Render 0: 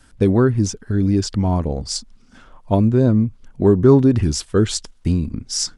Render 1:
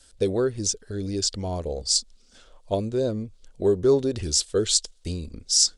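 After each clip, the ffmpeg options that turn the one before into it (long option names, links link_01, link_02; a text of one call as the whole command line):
ffmpeg -i in.wav -af "equalizer=frequency=125:width_type=o:width=1:gain=-9,equalizer=frequency=250:width_type=o:width=1:gain=-8,equalizer=frequency=500:width_type=o:width=1:gain=8,equalizer=frequency=1000:width_type=o:width=1:gain=-7,equalizer=frequency=2000:width_type=o:width=1:gain=-3,equalizer=frequency=4000:width_type=o:width=1:gain=9,equalizer=frequency=8000:width_type=o:width=1:gain=10,volume=-6.5dB" out.wav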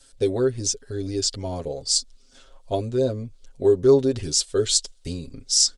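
ffmpeg -i in.wav -af "aecho=1:1:7.4:0.74,volume=-1dB" out.wav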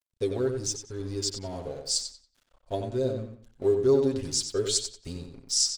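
ffmpeg -i in.wav -filter_complex "[0:a]aeval=exprs='sgn(val(0))*max(abs(val(0))-0.00562,0)':channel_layout=same,asplit=2[link_01][link_02];[link_02]adelay=92,lowpass=frequency=4700:poles=1,volume=-6dB,asplit=2[link_03][link_04];[link_04]adelay=92,lowpass=frequency=4700:poles=1,volume=0.3,asplit=2[link_05][link_06];[link_06]adelay=92,lowpass=frequency=4700:poles=1,volume=0.3,asplit=2[link_07][link_08];[link_08]adelay=92,lowpass=frequency=4700:poles=1,volume=0.3[link_09];[link_03][link_05][link_07][link_09]amix=inputs=4:normalize=0[link_10];[link_01][link_10]amix=inputs=2:normalize=0,volume=-6dB" out.wav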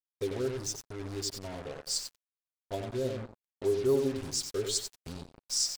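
ffmpeg -i in.wav -af "acrusher=bits=5:mix=0:aa=0.5,volume=-5dB" out.wav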